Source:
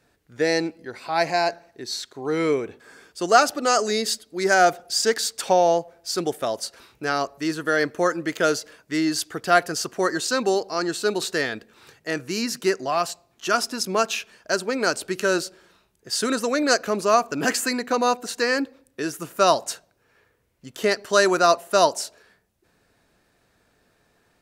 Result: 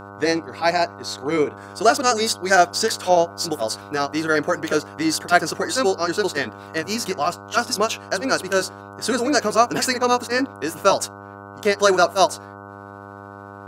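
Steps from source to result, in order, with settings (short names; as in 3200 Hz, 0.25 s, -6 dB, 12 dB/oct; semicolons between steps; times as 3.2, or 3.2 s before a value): granular stretch 0.56×, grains 0.149 s; buzz 100 Hz, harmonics 15, -42 dBFS -1 dB/oct; gain +3.5 dB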